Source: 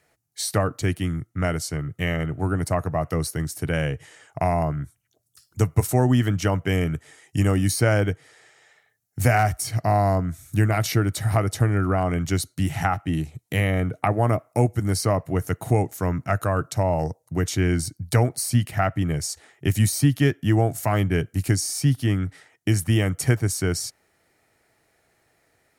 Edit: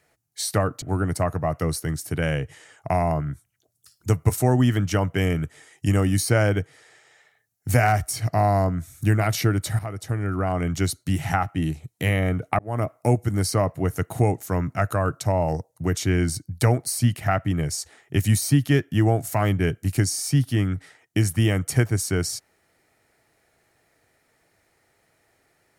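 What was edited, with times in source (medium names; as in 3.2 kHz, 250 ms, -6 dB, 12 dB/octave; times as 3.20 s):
0.82–2.33 s: delete
11.30–12.24 s: fade in, from -13.5 dB
14.10–14.42 s: fade in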